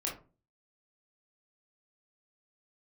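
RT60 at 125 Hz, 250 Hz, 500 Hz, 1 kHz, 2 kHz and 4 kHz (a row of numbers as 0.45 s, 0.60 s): 0.50 s, 0.45 s, 0.40 s, 0.30 s, 0.25 s, 0.20 s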